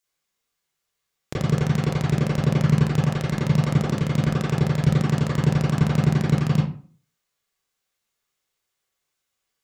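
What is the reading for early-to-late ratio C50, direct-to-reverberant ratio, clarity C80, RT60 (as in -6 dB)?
2.0 dB, -8.5 dB, 8.5 dB, 0.45 s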